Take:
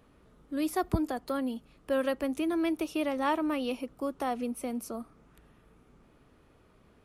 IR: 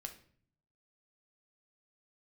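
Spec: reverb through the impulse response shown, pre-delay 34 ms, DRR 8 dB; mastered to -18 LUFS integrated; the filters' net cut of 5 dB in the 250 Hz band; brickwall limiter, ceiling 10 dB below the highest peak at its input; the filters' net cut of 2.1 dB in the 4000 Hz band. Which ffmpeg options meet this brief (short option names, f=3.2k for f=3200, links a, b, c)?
-filter_complex "[0:a]equalizer=f=250:t=o:g=-6.5,equalizer=f=4k:t=o:g=-3,alimiter=level_in=3.5dB:limit=-24dB:level=0:latency=1,volume=-3.5dB,asplit=2[a][b];[1:a]atrim=start_sample=2205,adelay=34[c];[b][c]afir=irnorm=-1:irlink=0,volume=-4.5dB[d];[a][d]amix=inputs=2:normalize=0,volume=19dB"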